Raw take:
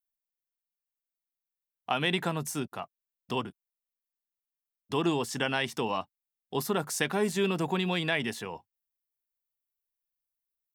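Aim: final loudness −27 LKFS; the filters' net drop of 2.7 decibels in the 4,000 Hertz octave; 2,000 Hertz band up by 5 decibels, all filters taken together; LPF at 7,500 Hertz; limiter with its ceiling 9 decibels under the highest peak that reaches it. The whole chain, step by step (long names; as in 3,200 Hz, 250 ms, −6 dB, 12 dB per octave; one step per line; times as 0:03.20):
low-pass filter 7,500 Hz
parametric band 2,000 Hz +8.5 dB
parametric band 4,000 Hz −8 dB
level +4.5 dB
brickwall limiter −13 dBFS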